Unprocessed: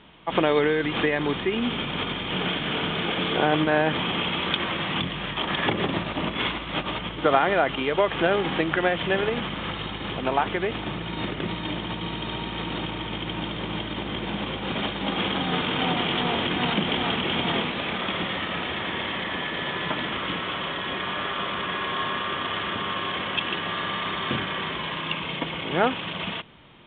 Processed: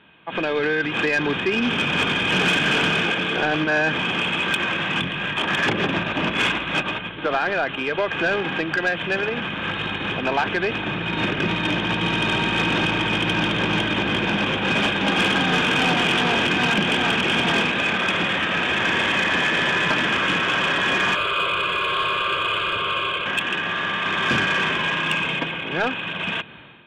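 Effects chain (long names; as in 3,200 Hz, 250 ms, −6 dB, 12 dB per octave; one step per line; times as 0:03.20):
high-pass filter 87 Hz
hollow resonant body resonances 1,600/2,500 Hz, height 13 dB, ringing for 30 ms
automatic gain control gain up to 14.5 dB
soft clipping −10 dBFS, distortion −15 dB
0:21.15–0:23.26: phaser with its sweep stopped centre 1,200 Hz, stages 8
level −3.5 dB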